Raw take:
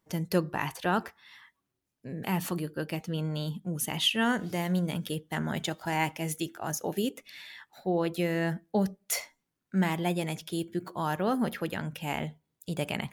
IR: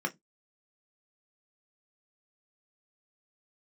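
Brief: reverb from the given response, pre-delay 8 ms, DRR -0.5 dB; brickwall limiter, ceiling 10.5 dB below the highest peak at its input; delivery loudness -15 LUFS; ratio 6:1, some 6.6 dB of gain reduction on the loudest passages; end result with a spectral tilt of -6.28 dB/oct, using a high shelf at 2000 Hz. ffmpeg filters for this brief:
-filter_complex "[0:a]highshelf=f=2k:g=-9,acompressor=threshold=-29dB:ratio=6,alimiter=level_in=6dB:limit=-24dB:level=0:latency=1,volume=-6dB,asplit=2[a][b];[1:a]atrim=start_sample=2205,adelay=8[c];[b][c]afir=irnorm=-1:irlink=0,volume=-5.5dB[d];[a][d]amix=inputs=2:normalize=0,volume=20.5dB"

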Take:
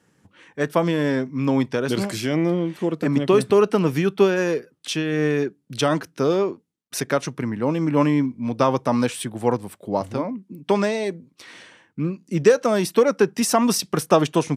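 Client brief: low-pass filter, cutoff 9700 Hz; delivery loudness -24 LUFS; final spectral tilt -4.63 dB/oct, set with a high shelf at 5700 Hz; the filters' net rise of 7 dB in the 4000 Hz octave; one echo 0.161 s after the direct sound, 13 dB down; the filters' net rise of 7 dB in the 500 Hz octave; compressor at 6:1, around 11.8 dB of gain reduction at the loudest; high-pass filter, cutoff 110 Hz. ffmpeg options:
-af "highpass=110,lowpass=9.7k,equalizer=f=500:t=o:g=8.5,equalizer=f=4k:t=o:g=8,highshelf=f=5.7k:g=3,acompressor=threshold=-16dB:ratio=6,aecho=1:1:161:0.224,volume=-2dB"

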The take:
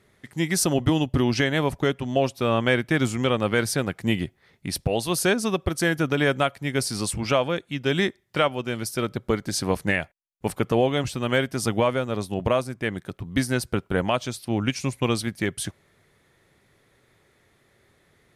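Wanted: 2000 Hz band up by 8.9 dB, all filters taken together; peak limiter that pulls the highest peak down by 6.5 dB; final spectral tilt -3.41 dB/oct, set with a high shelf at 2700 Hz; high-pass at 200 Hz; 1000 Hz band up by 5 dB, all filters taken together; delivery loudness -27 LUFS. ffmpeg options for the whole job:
-af "highpass=200,equalizer=f=1k:t=o:g=3,equalizer=f=2k:t=o:g=6.5,highshelf=f=2.7k:g=9,volume=-5.5dB,alimiter=limit=-12dB:level=0:latency=1"

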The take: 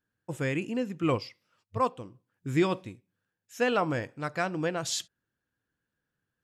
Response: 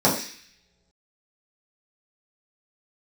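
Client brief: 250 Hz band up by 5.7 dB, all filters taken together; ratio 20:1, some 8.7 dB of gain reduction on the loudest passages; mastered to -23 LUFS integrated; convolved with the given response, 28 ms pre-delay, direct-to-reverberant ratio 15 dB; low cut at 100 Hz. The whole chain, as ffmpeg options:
-filter_complex "[0:a]highpass=100,equalizer=f=250:t=o:g=8,acompressor=threshold=-23dB:ratio=20,asplit=2[a][b];[1:a]atrim=start_sample=2205,adelay=28[c];[b][c]afir=irnorm=-1:irlink=0,volume=-33.5dB[d];[a][d]amix=inputs=2:normalize=0,volume=7.5dB"

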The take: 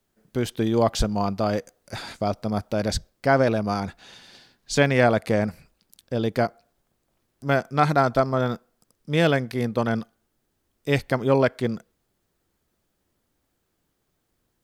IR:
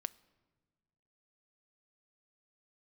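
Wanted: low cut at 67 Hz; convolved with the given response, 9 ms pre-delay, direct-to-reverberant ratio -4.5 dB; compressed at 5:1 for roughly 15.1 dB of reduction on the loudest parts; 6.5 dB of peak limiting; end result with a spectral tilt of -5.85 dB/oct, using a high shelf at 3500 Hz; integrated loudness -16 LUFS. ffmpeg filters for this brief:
-filter_complex "[0:a]highpass=67,highshelf=f=3.5k:g=-7,acompressor=threshold=-32dB:ratio=5,alimiter=level_in=2.5dB:limit=-24dB:level=0:latency=1,volume=-2.5dB,asplit=2[a][b];[1:a]atrim=start_sample=2205,adelay=9[c];[b][c]afir=irnorm=-1:irlink=0,volume=6.5dB[d];[a][d]amix=inputs=2:normalize=0,volume=16dB"

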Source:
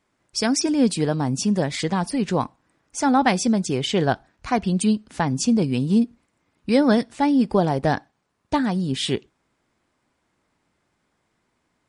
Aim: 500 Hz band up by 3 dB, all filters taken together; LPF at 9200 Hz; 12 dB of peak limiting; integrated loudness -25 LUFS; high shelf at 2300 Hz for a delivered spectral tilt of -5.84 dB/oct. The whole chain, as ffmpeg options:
-af "lowpass=9.2k,equalizer=f=500:t=o:g=4,highshelf=f=2.3k:g=-5.5,volume=0.5dB,alimiter=limit=-15dB:level=0:latency=1"

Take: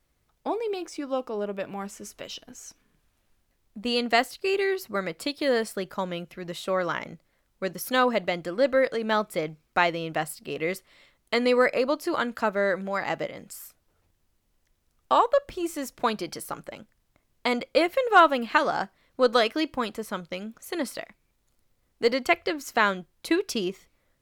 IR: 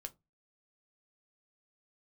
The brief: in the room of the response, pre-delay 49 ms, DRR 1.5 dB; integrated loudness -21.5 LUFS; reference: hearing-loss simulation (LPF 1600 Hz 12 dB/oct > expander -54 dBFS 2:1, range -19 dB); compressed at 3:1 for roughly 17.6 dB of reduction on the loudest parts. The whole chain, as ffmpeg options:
-filter_complex "[0:a]acompressor=threshold=-36dB:ratio=3,asplit=2[a][b];[1:a]atrim=start_sample=2205,adelay=49[c];[b][c]afir=irnorm=-1:irlink=0,volume=2.5dB[d];[a][d]amix=inputs=2:normalize=0,lowpass=1.6k,agate=range=-19dB:threshold=-54dB:ratio=2,volume=15dB"

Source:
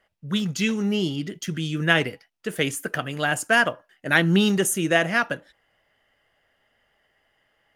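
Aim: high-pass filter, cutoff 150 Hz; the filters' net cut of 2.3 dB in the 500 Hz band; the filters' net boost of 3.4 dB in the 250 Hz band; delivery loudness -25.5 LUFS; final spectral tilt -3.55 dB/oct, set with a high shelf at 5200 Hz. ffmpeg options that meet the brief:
-af "highpass=150,equalizer=f=250:t=o:g=7.5,equalizer=f=500:t=o:g=-6,highshelf=f=5.2k:g=8.5,volume=-4.5dB"

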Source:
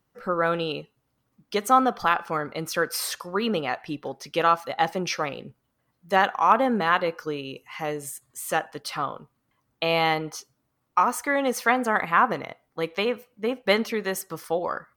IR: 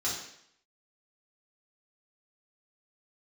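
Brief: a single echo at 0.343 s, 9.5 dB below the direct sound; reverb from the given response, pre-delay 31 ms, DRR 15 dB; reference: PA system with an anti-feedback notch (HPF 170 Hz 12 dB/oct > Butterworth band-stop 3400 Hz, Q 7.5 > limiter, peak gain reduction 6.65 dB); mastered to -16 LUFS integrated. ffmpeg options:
-filter_complex "[0:a]aecho=1:1:343:0.335,asplit=2[a][b];[1:a]atrim=start_sample=2205,adelay=31[c];[b][c]afir=irnorm=-1:irlink=0,volume=-21.5dB[d];[a][d]amix=inputs=2:normalize=0,highpass=170,asuperstop=centerf=3400:order=8:qfactor=7.5,volume=10.5dB,alimiter=limit=-1dB:level=0:latency=1"

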